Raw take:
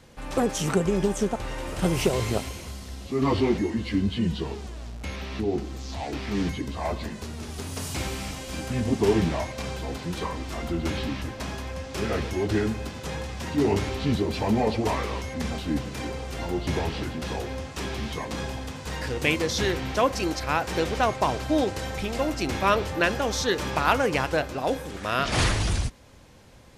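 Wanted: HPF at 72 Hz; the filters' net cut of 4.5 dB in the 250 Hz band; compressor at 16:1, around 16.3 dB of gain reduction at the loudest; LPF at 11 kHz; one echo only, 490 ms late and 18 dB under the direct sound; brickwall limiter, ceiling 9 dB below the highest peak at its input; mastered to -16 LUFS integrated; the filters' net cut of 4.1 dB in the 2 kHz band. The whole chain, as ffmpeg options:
-af "highpass=72,lowpass=11000,equalizer=f=250:t=o:g=-6,equalizer=f=2000:t=o:g=-5.5,acompressor=threshold=0.02:ratio=16,alimiter=level_in=2.51:limit=0.0631:level=0:latency=1,volume=0.398,aecho=1:1:490:0.126,volume=18.8"

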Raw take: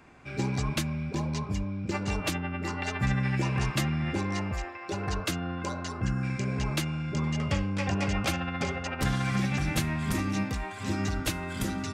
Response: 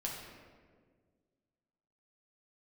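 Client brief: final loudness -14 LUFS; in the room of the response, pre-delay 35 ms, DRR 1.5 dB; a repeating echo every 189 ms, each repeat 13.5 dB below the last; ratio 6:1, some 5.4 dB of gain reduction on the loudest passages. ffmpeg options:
-filter_complex "[0:a]acompressor=threshold=0.0355:ratio=6,aecho=1:1:189|378:0.211|0.0444,asplit=2[s0][s1];[1:a]atrim=start_sample=2205,adelay=35[s2];[s1][s2]afir=irnorm=-1:irlink=0,volume=0.708[s3];[s0][s3]amix=inputs=2:normalize=0,volume=7.08"

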